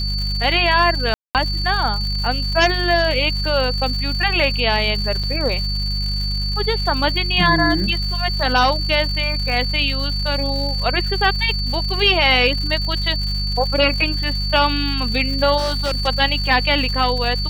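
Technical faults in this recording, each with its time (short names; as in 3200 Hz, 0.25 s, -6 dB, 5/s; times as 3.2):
crackle 230/s -27 dBFS
hum 50 Hz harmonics 4 -23 dBFS
tone 4500 Hz -24 dBFS
1.14–1.35 gap 0.208 s
5.23–5.24 gap 5.6 ms
15.57–16.08 clipped -16.5 dBFS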